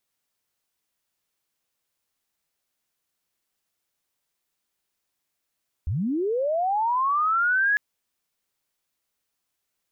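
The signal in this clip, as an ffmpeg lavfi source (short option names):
-f lavfi -i "aevalsrc='pow(10,(-23+5*t/1.9)/20)*sin(2*PI*(66*t+1634*t*t/(2*1.9)))':d=1.9:s=44100"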